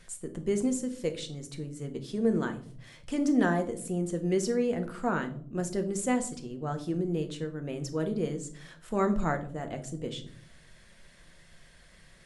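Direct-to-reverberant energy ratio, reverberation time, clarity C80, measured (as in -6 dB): 6.0 dB, 0.55 s, 18.0 dB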